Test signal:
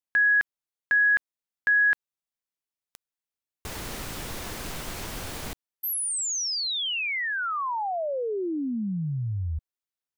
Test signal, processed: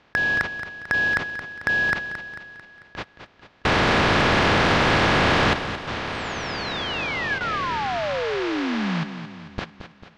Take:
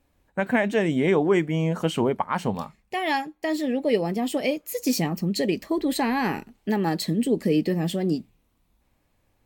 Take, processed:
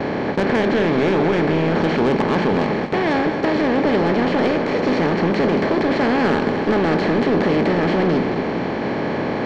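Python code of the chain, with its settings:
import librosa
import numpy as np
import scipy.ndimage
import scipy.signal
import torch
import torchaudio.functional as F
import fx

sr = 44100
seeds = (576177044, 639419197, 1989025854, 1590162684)

p1 = fx.bin_compress(x, sr, power=0.2)
p2 = fx.gate_hold(p1, sr, open_db=-13.0, close_db=-19.0, hold_ms=23.0, range_db=-29, attack_ms=0.62, release_ms=28.0)
p3 = scipy.ndimage.gaussian_filter1d(p2, 2.4, mode='constant')
p4 = fx.peak_eq(p3, sr, hz=95.0, db=2.5, octaves=2.5)
p5 = 10.0 ** (-12.5 / 20.0) * np.tanh(p4 / 10.0 ** (-12.5 / 20.0))
y = p5 + fx.echo_feedback(p5, sr, ms=222, feedback_pct=53, wet_db=-10.5, dry=0)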